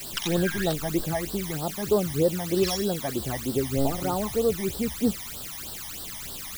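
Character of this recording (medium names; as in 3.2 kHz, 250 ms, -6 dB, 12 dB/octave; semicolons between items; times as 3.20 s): a quantiser's noise floor 6-bit, dither triangular; phasing stages 12, 3.2 Hz, lowest notch 430–2300 Hz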